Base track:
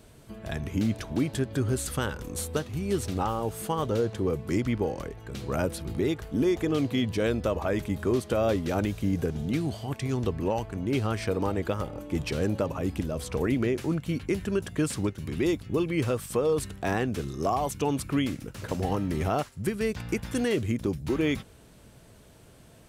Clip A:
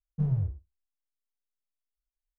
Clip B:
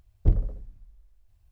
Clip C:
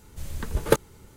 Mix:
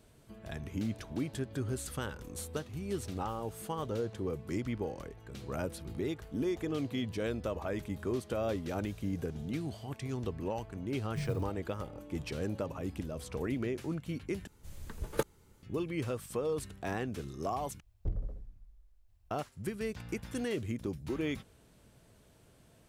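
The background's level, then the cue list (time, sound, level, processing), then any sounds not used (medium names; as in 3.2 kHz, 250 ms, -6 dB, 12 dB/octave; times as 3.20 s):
base track -8.5 dB
10.97 s: add A -9.5 dB + sampling jitter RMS 0.051 ms
14.47 s: replace with C -12 dB
17.80 s: replace with B -5 dB + compression 2.5:1, threshold -27 dBFS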